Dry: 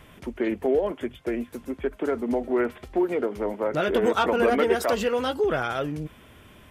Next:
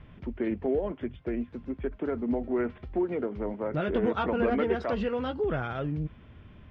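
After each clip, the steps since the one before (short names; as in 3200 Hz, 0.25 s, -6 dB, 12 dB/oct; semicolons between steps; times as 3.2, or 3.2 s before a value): LPF 5100 Hz 24 dB/oct; tone controls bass +11 dB, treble -11 dB; gain -7 dB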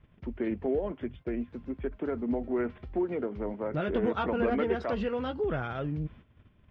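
gate -47 dBFS, range -12 dB; gain -1.5 dB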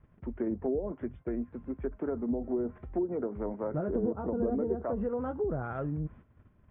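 Chebyshev low-pass 1400 Hz, order 2; treble ducked by the level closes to 510 Hz, closed at -26 dBFS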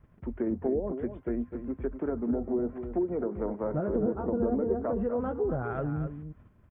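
echo 0.253 s -9.5 dB; gain +2 dB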